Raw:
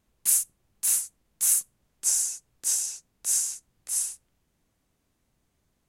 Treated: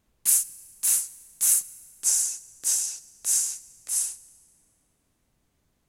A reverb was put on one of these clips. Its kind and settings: FDN reverb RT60 1.9 s, high-frequency decay 0.9×, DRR 18.5 dB; gain +1.5 dB

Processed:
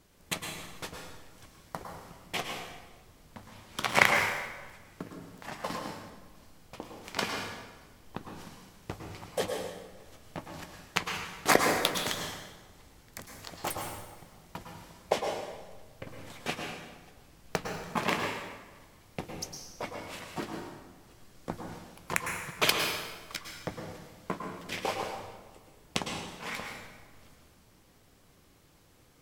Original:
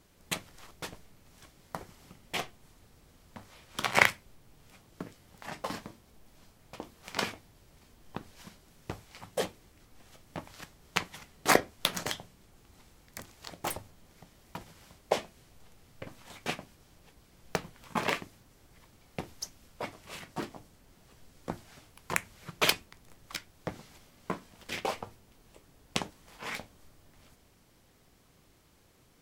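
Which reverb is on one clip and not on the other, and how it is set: plate-style reverb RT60 1.3 s, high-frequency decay 0.8×, pre-delay 95 ms, DRR 2 dB

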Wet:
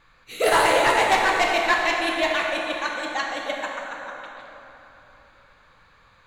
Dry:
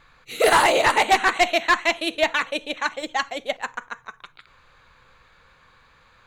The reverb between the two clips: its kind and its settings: plate-style reverb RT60 3.5 s, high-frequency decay 0.55×, DRR -1 dB; gain -4 dB

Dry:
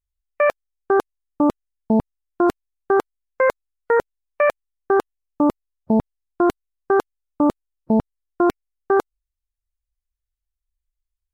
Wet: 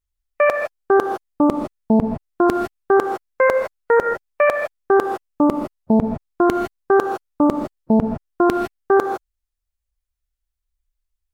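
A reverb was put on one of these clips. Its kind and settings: non-linear reverb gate 0.18 s rising, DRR 5 dB; gain +2 dB

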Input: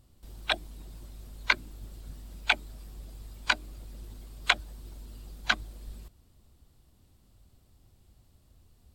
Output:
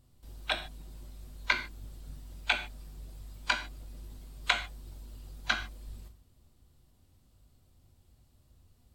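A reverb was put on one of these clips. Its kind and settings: non-linear reverb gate 0.17 s falling, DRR 5 dB; gain -4 dB

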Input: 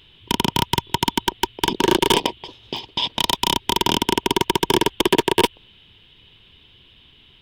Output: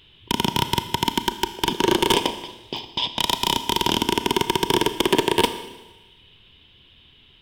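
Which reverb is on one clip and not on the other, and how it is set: Schroeder reverb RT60 1.1 s, combs from 26 ms, DRR 10 dB; gain -2 dB

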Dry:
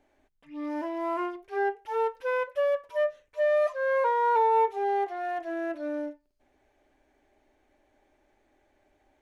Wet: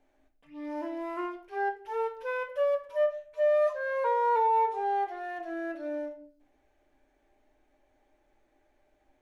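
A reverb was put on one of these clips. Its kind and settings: shoebox room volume 56 m³, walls mixed, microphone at 0.39 m; gain -4.5 dB

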